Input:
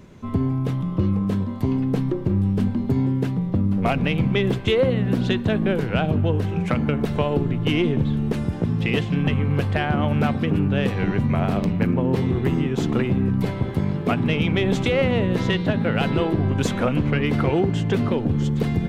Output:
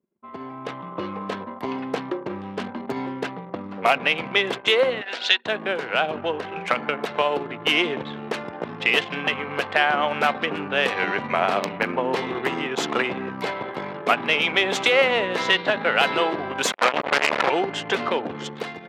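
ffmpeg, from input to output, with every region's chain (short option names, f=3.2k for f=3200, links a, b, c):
-filter_complex "[0:a]asettb=1/sr,asplit=3[a][b][c];[a]atrim=end=5.014[d];[b]atrim=start=5.01:end=5.46,asetpts=PTS-STARTPTS,afade=t=in:d=0.004:c=qsin,afade=t=out:st=0.446:d=0.004:c=qsin,highpass=600,lowpass=6.4k,equalizer=f=4.3k:w=0.48:g=8.5,bandreject=f=1.1k:w=5.3[e];[c]atrim=start=5.456[f];[d][e]acrossfade=d=0.004:c1=hsin:c2=qsin[g];[g][f]acrossfade=d=0.004:c1=qsin:c2=hsin,asettb=1/sr,asplit=3[h][i][j];[h]atrim=end=16.724[k];[i]atrim=start=16.72:end=17.5,asetpts=PTS-STARTPTS,afade=t=in:d=0.004:c=qsin,afade=t=out:st=0.776:d=0.004:c=qsin,lowpass=f=2.9k:p=1,acrusher=bits=2:mix=0:aa=0.5[l];[j]atrim=start=17.496[m];[k][l]acrossfade=d=0.004:c1=hsin:c2=qsin[n];[n][m]acrossfade=d=0.004:c1=qsin:c2=hsin,anlmdn=6.31,highpass=720,dynaudnorm=f=240:g=5:m=10.5dB,volume=-1dB"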